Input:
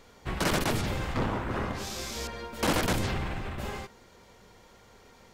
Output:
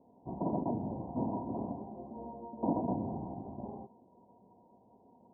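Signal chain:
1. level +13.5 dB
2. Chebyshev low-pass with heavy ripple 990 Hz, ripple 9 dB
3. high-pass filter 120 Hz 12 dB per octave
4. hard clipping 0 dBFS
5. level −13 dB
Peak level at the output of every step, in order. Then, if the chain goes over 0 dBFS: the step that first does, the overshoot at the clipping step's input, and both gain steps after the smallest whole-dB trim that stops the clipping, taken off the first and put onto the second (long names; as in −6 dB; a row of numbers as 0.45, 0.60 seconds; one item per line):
−4.5, −6.5, −6.0, −6.0, −19.0 dBFS
no step passes full scale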